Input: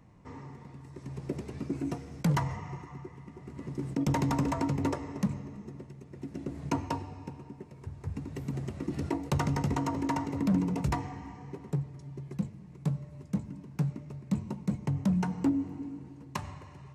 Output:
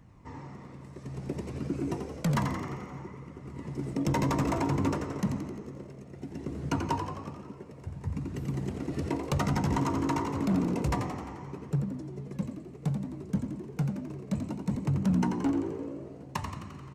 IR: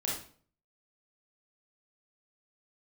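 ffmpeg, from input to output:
-filter_complex "[0:a]asoftclip=type=hard:threshold=-22.5dB,flanger=delay=0.6:depth=1.4:regen=61:speed=0.6:shape=triangular,asplit=9[link_01][link_02][link_03][link_04][link_05][link_06][link_07][link_08][link_09];[link_02]adelay=87,afreqshift=57,volume=-7dB[link_10];[link_03]adelay=174,afreqshift=114,volume=-11.6dB[link_11];[link_04]adelay=261,afreqshift=171,volume=-16.2dB[link_12];[link_05]adelay=348,afreqshift=228,volume=-20.7dB[link_13];[link_06]adelay=435,afreqshift=285,volume=-25.3dB[link_14];[link_07]adelay=522,afreqshift=342,volume=-29.9dB[link_15];[link_08]adelay=609,afreqshift=399,volume=-34.5dB[link_16];[link_09]adelay=696,afreqshift=456,volume=-39.1dB[link_17];[link_01][link_10][link_11][link_12][link_13][link_14][link_15][link_16][link_17]amix=inputs=9:normalize=0,volume=5.5dB"

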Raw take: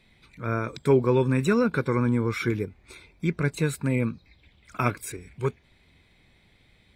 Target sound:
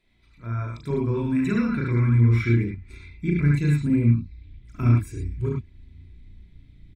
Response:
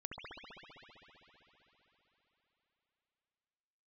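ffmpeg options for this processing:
-filter_complex "[0:a]asettb=1/sr,asplit=3[link_01][link_02][link_03];[link_01]atrim=end=1.364[link_04];[link_02]atrim=start=1.36:end=3.73,asetpts=PTS-STARTPTS,afade=type=in:duration=0.004:curve=qsin,afade=type=out:start_time=2.366:duration=0.004:curve=qsin,equalizer=frequency=2000:width=1.4:gain=9.5[link_05];[link_03]atrim=start=3.726[link_06];[link_04][link_05]acrossfade=duration=0.004:curve1=hsin:curve2=qsin[link_07];[link_07][link_06]acrossfade=duration=0.004:curve1=qsin:curve2=hsin,aecho=1:1:3:0.41,asubboost=boost=11.5:cutoff=210[link_08];[1:a]atrim=start_sample=2205,afade=type=out:start_time=0.28:duration=0.01,atrim=end_sample=12789,asetrate=83790,aresample=44100[link_09];[link_08][link_09]afir=irnorm=-1:irlink=0"

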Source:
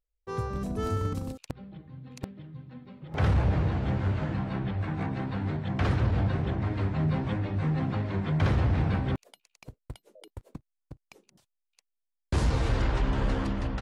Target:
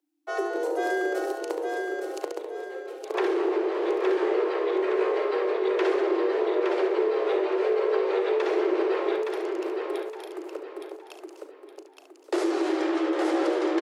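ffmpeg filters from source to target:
ffmpeg -i in.wav -filter_complex "[0:a]asplit=2[link_01][link_02];[link_02]aecho=0:1:37|71:0.224|0.355[link_03];[link_01][link_03]amix=inputs=2:normalize=0,acompressor=threshold=-27dB:ratio=6,asplit=2[link_04][link_05];[link_05]aecho=0:1:866|1732|2598|3464:0.596|0.203|0.0689|0.0234[link_06];[link_04][link_06]amix=inputs=2:normalize=0,afreqshift=280,volume=4.5dB" out.wav

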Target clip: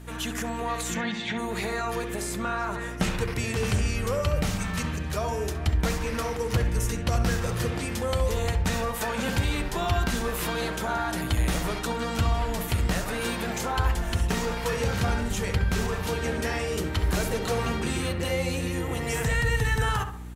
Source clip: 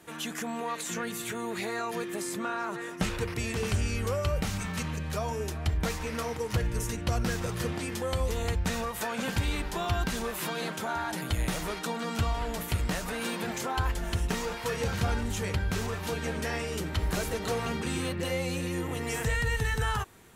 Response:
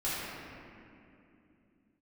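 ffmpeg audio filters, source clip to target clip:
-filter_complex "[0:a]aeval=exprs='val(0)+0.00562*(sin(2*PI*60*n/s)+sin(2*PI*2*60*n/s)/2+sin(2*PI*3*60*n/s)/3+sin(2*PI*4*60*n/s)/4+sin(2*PI*5*60*n/s)/5)':channel_layout=same,asplit=3[link_01][link_02][link_03];[link_01]afade=type=out:start_time=0.94:duration=0.02[link_04];[link_02]highpass=140,equalizer=frequency=210:width_type=q:width=4:gain=9,equalizer=frequency=410:width_type=q:width=4:gain=-7,equalizer=frequency=810:width_type=q:width=4:gain=8,equalizer=frequency=1300:width_type=q:width=4:gain=-7,equalizer=frequency=2000:width_type=q:width=4:gain=7,equalizer=frequency=3500:width_type=q:width=4:gain=7,lowpass=frequency=5200:width=0.5412,lowpass=frequency=5200:width=1.3066,afade=type=in:start_time=0.94:duration=0.02,afade=type=out:start_time=1.37:duration=0.02[link_05];[link_03]afade=type=in:start_time=1.37:duration=0.02[link_06];[link_04][link_05][link_06]amix=inputs=3:normalize=0,asplit=2[link_07][link_08];[link_08]adelay=67,lowpass=frequency=1700:poles=1,volume=-7dB,asplit=2[link_09][link_10];[link_10]adelay=67,lowpass=frequency=1700:poles=1,volume=0.5,asplit=2[link_11][link_12];[link_12]adelay=67,lowpass=frequency=1700:poles=1,volume=0.5,asplit=2[link_13][link_14];[link_14]adelay=67,lowpass=frequency=1700:poles=1,volume=0.5,asplit=2[link_15][link_16];[link_16]adelay=67,lowpass=frequency=1700:poles=1,volume=0.5,asplit=2[link_17][link_18];[link_18]adelay=67,lowpass=frequency=1700:poles=1,volume=0.5[link_19];[link_07][link_09][link_11][link_13][link_15][link_17][link_19]amix=inputs=7:normalize=0,volume=3dB"

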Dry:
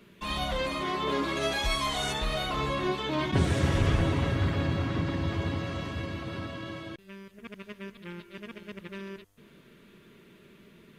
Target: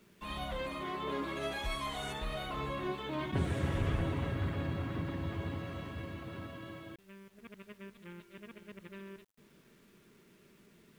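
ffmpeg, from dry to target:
ffmpeg -i in.wav -af "equalizer=frequency=5400:width=1.2:gain=-8.5,acrusher=bits=9:mix=0:aa=0.000001,volume=-7.5dB" out.wav

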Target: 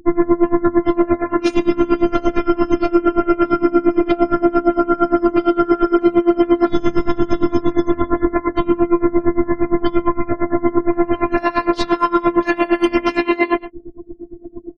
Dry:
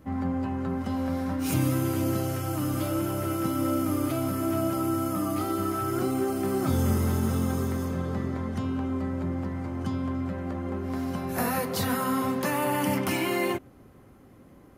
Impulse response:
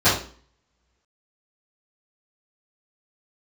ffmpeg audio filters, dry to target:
-filter_complex "[0:a]lowpass=4700,afftfilt=real='re*gte(hypot(re,im),0.00631)':imag='im*gte(hypot(re,im),0.00631)':win_size=1024:overlap=0.75,highshelf=frequency=2100:gain=-2,asplit=2[link_01][link_02];[link_02]adelay=122.4,volume=-22dB,highshelf=frequency=4000:gain=-2.76[link_03];[link_01][link_03]amix=inputs=2:normalize=0,asplit=2[link_04][link_05];[link_05]acompressor=threshold=-38dB:ratio=10,volume=0dB[link_06];[link_04][link_06]amix=inputs=2:normalize=0,flanger=delay=2.9:depth=7.7:regen=-57:speed=0.14:shape=triangular,afftfilt=real='hypot(re,im)*cos(PI*b)':imag='0':win_size=512:overlap=0.75,alimiter=level_in=27.5dB:limit=-1dB:release=50:level=0:latency=1,aeval=exprs='val(0)*pow(10,-23*(0.5-0.5*cos(2*PI*8.7*n/s))/20)':channel_layout=same"

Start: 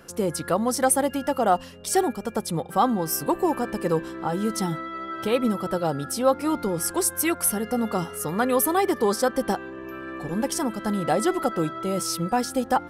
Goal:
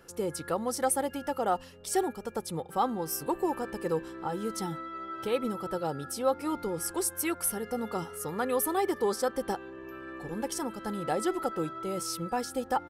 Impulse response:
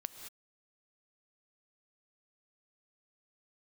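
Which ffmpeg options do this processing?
-af "aecho=1:1:2.3:0.3,volume=-7.5dB"

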